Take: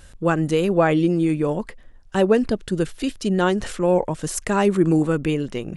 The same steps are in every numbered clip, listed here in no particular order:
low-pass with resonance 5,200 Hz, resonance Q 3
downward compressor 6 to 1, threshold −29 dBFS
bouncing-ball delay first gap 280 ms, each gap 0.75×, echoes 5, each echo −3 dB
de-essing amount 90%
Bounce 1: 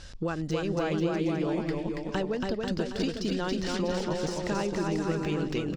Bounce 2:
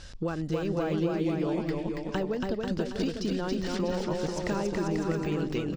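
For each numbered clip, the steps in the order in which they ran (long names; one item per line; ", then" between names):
downward compressor, then low-pass with resonance, then de-essing, then bouncing-ball delay
low-pass with resonance, then de-essing, then downward compressor, then bouncing-ball delay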